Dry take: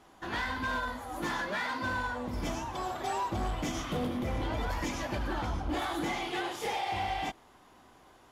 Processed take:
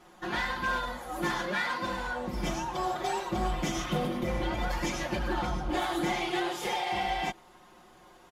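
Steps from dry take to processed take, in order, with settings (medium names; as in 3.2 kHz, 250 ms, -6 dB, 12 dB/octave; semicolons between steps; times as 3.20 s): comb 5.6 ms, depth 99%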